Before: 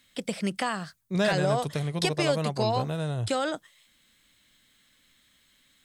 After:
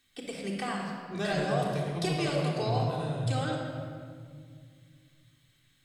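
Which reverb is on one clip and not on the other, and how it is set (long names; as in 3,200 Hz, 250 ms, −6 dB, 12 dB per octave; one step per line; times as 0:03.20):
rectangular room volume 3,700 cubic metres, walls mixed, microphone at 3.6 metres
level −9 dB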